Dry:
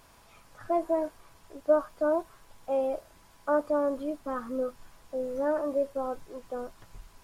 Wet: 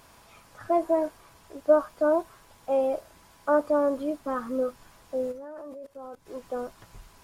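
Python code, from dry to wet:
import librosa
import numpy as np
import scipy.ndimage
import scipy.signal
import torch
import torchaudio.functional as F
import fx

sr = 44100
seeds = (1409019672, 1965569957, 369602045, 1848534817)

y = fx.highpass(x, sr, hz=48.0, slope=6)
y = fx.level_steps(y, sr, step_db=22, at=(5.31, 6.25), fade=0.02)
y = F.gain(torch.from_numpy(y), 3.5).numpy()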